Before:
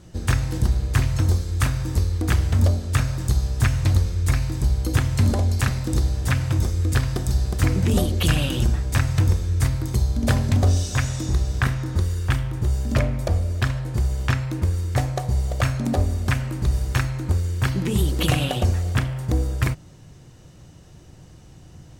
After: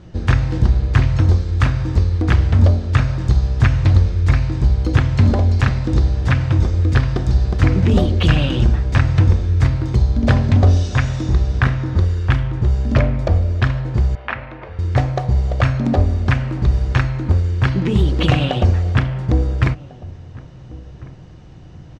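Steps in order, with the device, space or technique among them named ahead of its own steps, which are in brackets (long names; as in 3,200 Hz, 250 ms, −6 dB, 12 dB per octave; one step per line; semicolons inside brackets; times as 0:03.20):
0:14.15–0:14.79: Chebyshev band-pass filter 610–2,500 Hz, order 2
shout across a valley (high-frequency loss of the air 180 metres; slap from a distant wall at 240 metres, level −20 dB)
level +6 dB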